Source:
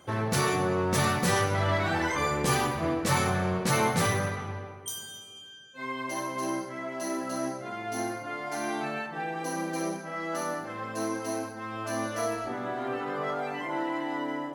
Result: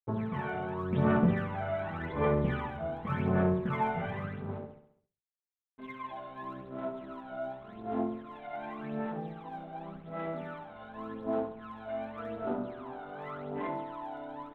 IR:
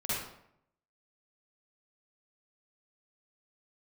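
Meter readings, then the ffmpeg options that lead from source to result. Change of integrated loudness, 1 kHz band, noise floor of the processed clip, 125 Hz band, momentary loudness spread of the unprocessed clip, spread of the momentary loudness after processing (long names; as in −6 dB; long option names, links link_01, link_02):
−5.0 dB, −7.0 dB, below −85 dBFS, −3.0 dB, 11 LU, 15 LU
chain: -af "afwtdn=0.0178,lowpass=frequency=1100:poles=1,aecho=1:1:4.7:0.44,aresample=8000,aeval=exprs='sgn(val(0))*max(abs(val(0))-0.00299,0)':channel_layout=same,aresample=44100,aphaser=in_gain=1:out_gain=1:delay=1.4:decay=0.73:speed=0.88:type=sinusoidal,aecho=1:1:68|136|204|272|340|408:0.316|0.161|0.0823|0.0419|0.0214|0.0109,volume=-8dB"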